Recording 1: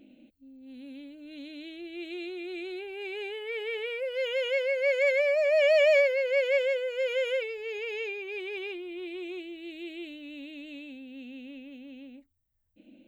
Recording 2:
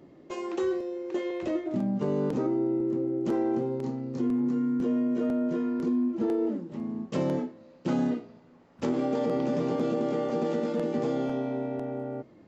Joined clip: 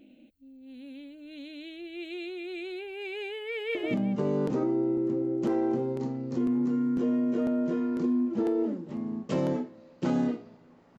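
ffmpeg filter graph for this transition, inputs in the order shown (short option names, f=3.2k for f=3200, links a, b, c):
-filter_complex "[0:a]apad=whole_dur=10.98,atrim=end=10.98,atrim=end=3.752[a];[1:a]atrim=start=1.578:end=8.81[b];[a][b]acrossfade=d=0.004:c1=hsin:c2=hsin,asplit=2[c][d];[d]afade=t=in:st=3.5:d=0.01,afade=t=out:st=3.75:d=0.01,aecho=0:1:190|380|570:0.749894|0.149979|0.0299958[e];[c][e]amix=inputs=2:normalize=0"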